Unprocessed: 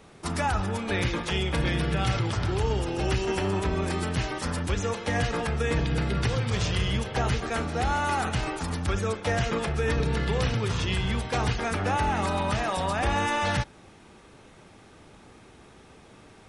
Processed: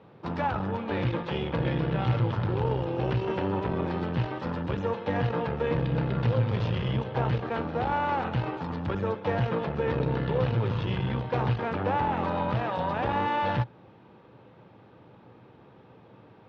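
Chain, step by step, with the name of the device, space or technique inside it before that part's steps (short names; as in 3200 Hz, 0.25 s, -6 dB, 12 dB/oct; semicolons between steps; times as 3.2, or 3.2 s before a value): guitar amplifier (tube stage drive 23 dB, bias 0.8; tone controls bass +3 dB, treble -12 dB; speaker cabinet 110–4500 Hz, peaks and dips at 120 Hz +9 dB, 180 Hz +3 dB, 310 Hz +3 dB, 510 Hz +8 dB, 920 Hz +6 dB, 2100 Hz -4 dB)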